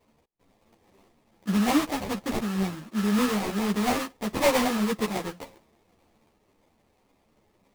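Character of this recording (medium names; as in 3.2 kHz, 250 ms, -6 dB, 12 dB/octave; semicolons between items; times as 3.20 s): aliases and images of a low sample rate 1.5 kHz, jitter 20%; a shimmering, thickened sound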